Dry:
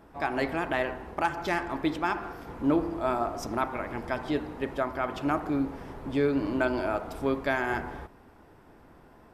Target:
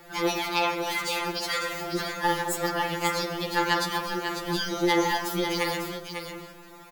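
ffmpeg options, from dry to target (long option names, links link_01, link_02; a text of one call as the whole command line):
ffmpeg -i in.wav -filter_complex "[0:a]aemphasis=mode=production:type=75fm,acrossover=split=2300[link_01][link_02];[link_01]asoftclip=type=tanh:threshold=-28.5dB[link_03];[link_03][link_02]amix=inputs=2:normalize=0,asetrate=59535,aresample=44100,equalizer=frequency=4600:width=1.6:gain=5.5,alimiter=limit=-23.5dB:level=0:latency=1:release=31,aecho=1:1:547:0.422,afftfilt=real='re*2.83*eq(mod(b,8),0)':imag='im*2.83*eq(mod(b,8),0)':win_size=2048:overlap=0.75,volume=8dB" out.wav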